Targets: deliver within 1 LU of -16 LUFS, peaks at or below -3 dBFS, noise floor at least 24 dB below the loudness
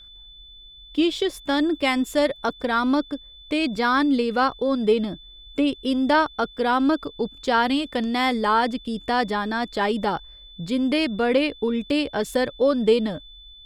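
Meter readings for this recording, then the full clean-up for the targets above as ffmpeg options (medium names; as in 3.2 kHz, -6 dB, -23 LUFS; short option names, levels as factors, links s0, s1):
steady tone 3.5 kHz; tone level -44 dBFS; loudness -23.0 LUFS; peak level -8.0 dBFS; loudness target -16.0 LUFS
-> -af "bandreject=f=3500:w=30"
-af "volume=2.24,alimiter=limit=0.708:level=0:latency=1"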